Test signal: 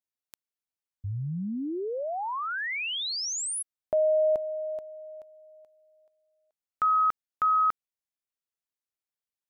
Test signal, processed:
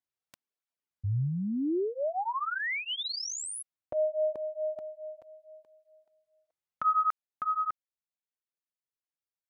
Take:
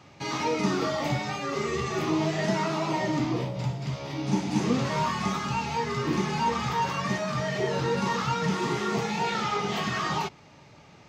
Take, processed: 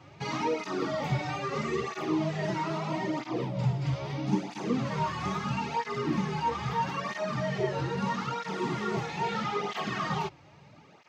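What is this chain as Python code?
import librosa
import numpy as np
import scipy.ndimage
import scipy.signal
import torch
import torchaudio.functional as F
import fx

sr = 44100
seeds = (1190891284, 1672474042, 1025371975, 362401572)

y = fx.high_shelf(x, sr, hz=4900.0, db=-9.0)
y = fx.rider(y, sr, range_db=4, speed_s=0.5)
y = fx.flanger_cancel(y, sr, hz=0.77, depth_ms=5.0)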